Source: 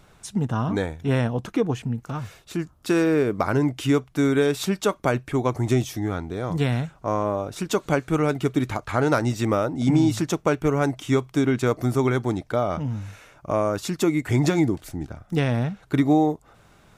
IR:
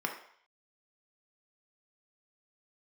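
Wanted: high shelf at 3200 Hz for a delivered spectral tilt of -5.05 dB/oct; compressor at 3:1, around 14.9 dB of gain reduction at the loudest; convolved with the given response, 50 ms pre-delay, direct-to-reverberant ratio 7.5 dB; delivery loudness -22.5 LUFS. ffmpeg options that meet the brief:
-filter_complex "[0:a]highshelf=f=3.2k:g=8.5,acompressor=threshold=-36dB:ratio=3,asplit=2[a][b];[1:a]atrim=start_sample=2205,adelay=50[c];[b][c]afir=irnorm=-1:irlink=0,volume=-13dB[d];[a][d]amix=inputs=2:normalize=0,volume=13dB"

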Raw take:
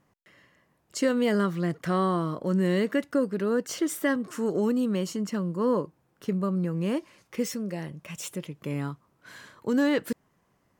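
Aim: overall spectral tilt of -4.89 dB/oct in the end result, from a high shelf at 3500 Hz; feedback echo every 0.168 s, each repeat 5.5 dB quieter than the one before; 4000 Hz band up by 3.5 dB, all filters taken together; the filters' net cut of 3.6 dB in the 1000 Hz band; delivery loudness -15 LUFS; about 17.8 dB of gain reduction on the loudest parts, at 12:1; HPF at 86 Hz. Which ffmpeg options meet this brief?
-af "highpass=86,equalizer=f=1k:t=o:g=-4.5,highshelf=f=3.5k:g=-4.5,equalizer=f=4k:t=o:g=8.5,acompressor=threshold=-39dB:ratio=12,aecho=1:1:168|336|504|672|840|1008|1176:0.531|0.281|0.149|0.079|0.0419|0.0222|0.0118,volume=27.5dB"

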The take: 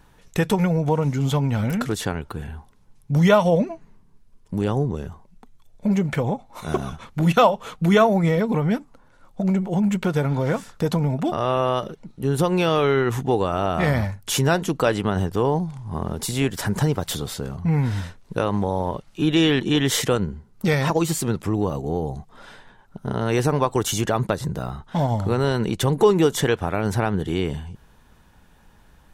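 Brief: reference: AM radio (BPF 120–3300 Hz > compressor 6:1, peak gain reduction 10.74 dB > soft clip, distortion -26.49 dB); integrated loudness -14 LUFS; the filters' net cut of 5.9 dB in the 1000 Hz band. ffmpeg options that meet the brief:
-af "highpass=120,lowpass=3.3k,equalizer=f=1k:t=o:g=-8,acompressor=threshold=-23dB:ratio=6,asoftclip=threshold=-14.5dB,volume=15.5dB"

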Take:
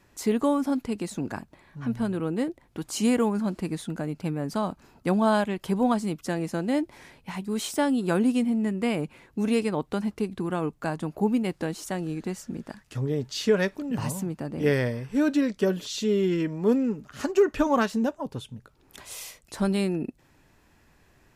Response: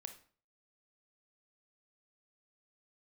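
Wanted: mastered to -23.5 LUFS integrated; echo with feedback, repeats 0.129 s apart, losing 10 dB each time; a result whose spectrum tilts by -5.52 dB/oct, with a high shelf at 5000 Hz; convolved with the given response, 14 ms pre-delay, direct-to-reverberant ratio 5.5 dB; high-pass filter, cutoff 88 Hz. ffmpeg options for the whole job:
-filter_complex "[0:a]highpass=88,highshelf=f=5k:g=3.5,aecho=1:1:129|258|387|516:0.316|0.101|0.0324|0.0104,asplit=2[a][b];[1:a]atrim=start_sample=2205,adelay=14[c];[b][c]afir=irnorm=-1:irlink=0,volume=-0.5dB[d];[a][d]amix=inputs=2:normalize=0,volume=2dB"

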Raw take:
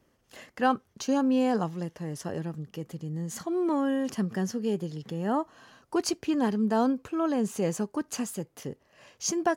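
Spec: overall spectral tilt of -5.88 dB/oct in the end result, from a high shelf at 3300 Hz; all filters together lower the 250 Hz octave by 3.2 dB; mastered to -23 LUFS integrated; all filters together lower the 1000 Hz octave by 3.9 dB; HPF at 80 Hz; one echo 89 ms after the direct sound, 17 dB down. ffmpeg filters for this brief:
-af "highpass=80,equalizer=f=250:t=o:g=-3.5,equalizer=f=1k:t=o:g=-4.5,highshelf=f=3.3k:g=-8,aecho=1:1:89:0.141,volume=9.5dB"

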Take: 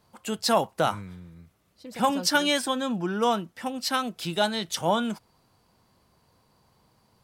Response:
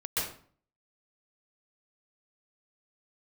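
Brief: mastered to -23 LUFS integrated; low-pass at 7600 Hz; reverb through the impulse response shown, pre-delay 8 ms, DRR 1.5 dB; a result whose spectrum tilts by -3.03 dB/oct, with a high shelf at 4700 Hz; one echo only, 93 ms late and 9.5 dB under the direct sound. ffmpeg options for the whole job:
-filter_complex "[0:a]lowpass=7.6k,highshelf=f=4.7k:g=-6.5,aecho=1:1:93:0.335,asplit=2[a][b];[1:a]atrim=start_sample=2205,adelay=8[c];[b][c]afir=irnorm=-1:irlink=0,volume=-8.5dB[d];[a][d]amix=inputs=2:normalize=0,volume=2dB"

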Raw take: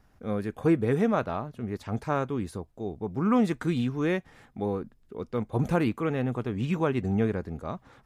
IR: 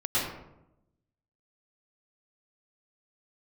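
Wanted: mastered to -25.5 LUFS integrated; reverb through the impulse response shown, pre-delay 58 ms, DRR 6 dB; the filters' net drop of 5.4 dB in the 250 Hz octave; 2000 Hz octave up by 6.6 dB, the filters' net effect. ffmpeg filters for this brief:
-filter_complex "[0:a]equalizer=f=250:t=o:g=-7.5,equalizer=f=2k:t=o:g=8.5,asplit=2[a][b];[1:a]atrim=start_sample=2205,adelay=58[c];[b][c]afir=irnorm=-1:irlink=0,volume=-17dB[d];[a][d]amix=inputs=2:normalize=0,volume=4dB"

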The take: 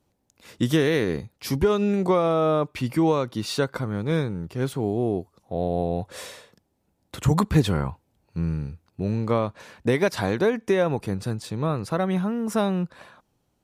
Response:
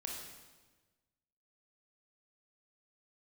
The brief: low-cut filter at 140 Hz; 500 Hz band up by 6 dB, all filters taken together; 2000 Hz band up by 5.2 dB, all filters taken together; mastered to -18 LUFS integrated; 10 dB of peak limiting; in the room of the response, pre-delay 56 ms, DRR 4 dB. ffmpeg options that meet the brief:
-filter_complex "[0:a]highpass=140,equalizer=f=500:t=o:g=7,equalizer=f=2k:t=o:g=6,alimiter=limit=-14dB:level=0:latency=1,asplit=2[a][b];[1:a]atrim=start_sample=2205,adelay=56[c];[b][c]afir=irnorm=-1:irlink=0,volume=-3dB[d];[a][d]amix=inputs=2:normalize=0,volume=6dB"

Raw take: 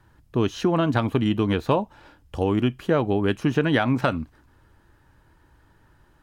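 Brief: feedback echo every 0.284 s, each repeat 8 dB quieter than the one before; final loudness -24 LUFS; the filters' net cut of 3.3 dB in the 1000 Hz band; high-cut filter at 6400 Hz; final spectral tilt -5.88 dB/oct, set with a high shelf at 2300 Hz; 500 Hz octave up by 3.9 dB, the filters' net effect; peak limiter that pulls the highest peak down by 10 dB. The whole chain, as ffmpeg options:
-af "lowpass=6.4k,equalizer=f=500:t=o:g=6.5,equalizer=f=1k:t=o:g=-8.5,highshelf=f=2.3k:g=7,alimiter=limit=-15.5dB:level=0:latency=1,aecho=1:1:284|568|852|1136|1420:0.398|0.159|0.0637|0.0255|0.0102,volume=2dB"

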